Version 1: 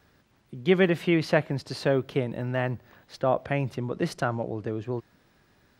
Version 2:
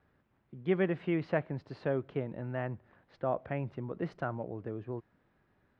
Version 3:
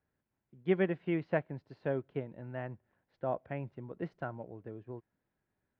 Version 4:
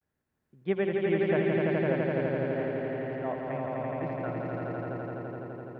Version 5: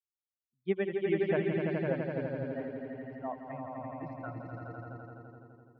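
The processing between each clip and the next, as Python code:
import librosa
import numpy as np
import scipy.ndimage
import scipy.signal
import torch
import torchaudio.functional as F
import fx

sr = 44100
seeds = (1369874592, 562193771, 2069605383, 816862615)

y1 = scipy.signal.sosfilt(scipy.signal.butter(2, 2000.0, 'lowpass', fs=sr, output='sos'), x)
y1 = y1 * 10.0 ** (-8.0 / 20.0)
y2 = fx.notch(y1, sr, hz=1200.0, q=10.0)
y2 = fx.upward_expand(y2, sr, threshold_db=-52.0, expansion=1.5)
y2 = y2 * 10.0 ** (1.0 / 20.0)
y3 = fx.vibrato(y2, sr, rate_hz=0.45, depth_cents=61.0)
y3 = fx.echo_swell(y3, sr, ms=84, loudest=5, wet_db=-3)
y4 = fx.bin_expand(y3, sr, power=2.0)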